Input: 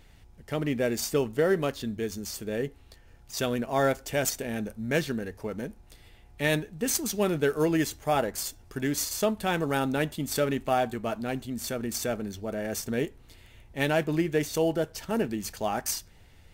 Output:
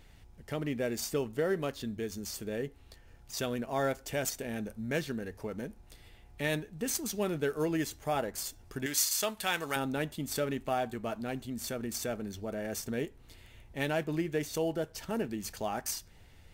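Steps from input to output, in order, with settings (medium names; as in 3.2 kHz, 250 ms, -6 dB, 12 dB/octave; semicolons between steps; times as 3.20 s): 8.86–9.76 s: tilt shelf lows -9 dB, about 740 Hz; in parallel at +0.5 dB: compression, threshold -36 dBFS, peak gain reduction 17 dB; on the sum: trim -8 dB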